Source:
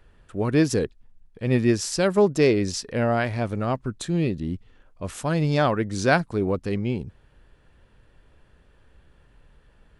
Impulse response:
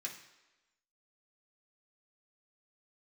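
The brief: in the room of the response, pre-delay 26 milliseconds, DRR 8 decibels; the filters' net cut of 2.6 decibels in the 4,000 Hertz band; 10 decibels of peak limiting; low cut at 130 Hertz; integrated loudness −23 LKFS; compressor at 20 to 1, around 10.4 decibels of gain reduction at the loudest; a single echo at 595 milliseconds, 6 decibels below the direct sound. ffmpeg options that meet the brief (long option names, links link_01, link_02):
-filter_complex "[0:a]highpass=130,equalizer=frequency=4000:width_type=o:gain=-3.5,acompressor=threshold=-24dB:ratio=20,alimiter=level_in=1.5dB:limit=-24dB:level=0:latency=1,volume=-1.5dB,aecho=1:1:595:0.501,asplit=2[link_01][link_02];[1:a]atrim=start_sample=2205,adelay=26[link_03];[link_02][link_03]afir=irnorm=-1:irlink=0,volume=-7dB[link_04];[link_01][link_04]amix=inputs=2:normalize=0,volume=12dB"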